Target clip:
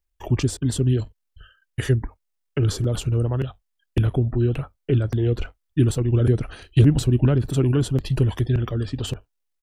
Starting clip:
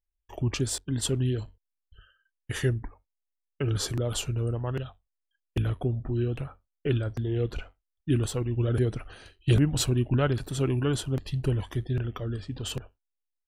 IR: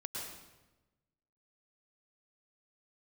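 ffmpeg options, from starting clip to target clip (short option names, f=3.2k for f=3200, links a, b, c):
-filter_complex "[0:a]atempo=1.4,acrossover=split=410[a][b];[b]acompressor=threshold=-39dB:ratio=5[c];[a][c]amix=inputs=2:normalize=0,volume=8dB"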